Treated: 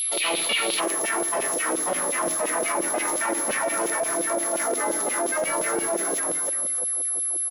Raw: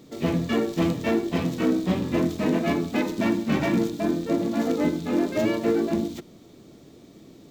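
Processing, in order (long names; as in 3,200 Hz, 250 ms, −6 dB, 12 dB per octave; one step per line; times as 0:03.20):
echo with shifted repeats 298 ms, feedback 41%, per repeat −53 Hz, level −6 dB
auto-filter high-pass saw down 5.7 Hz 460–3,400 Hz
notch filter 1,700 Hz, Q 20
convolution reverb, pre-delay 6 ms, DRR 10.5 dB
steady tone 11,000 Hz −33 dBFS
low-shelf EQ 150 Hz −10.5 dB
brickwall limiter −20 dBFS, peak gain reduction 9 dB
flat-topped bell 3,200 Hz +9 dB 1.2 octaves, from 0:00.79 −10 dB
envelope flattener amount 70%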